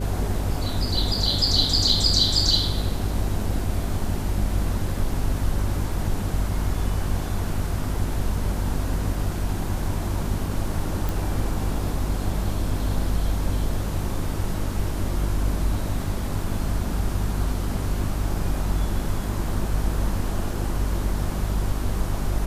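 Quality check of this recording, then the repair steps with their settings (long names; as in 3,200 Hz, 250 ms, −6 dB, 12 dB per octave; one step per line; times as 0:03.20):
mains hum 50 Hz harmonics 8 −28 dBFS
0:11.09: click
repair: click removal
hum removal 50 Hz, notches 8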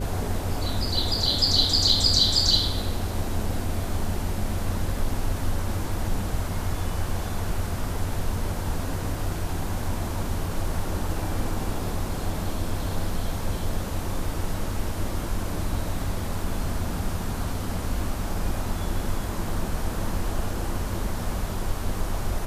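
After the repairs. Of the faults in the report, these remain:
none of them is left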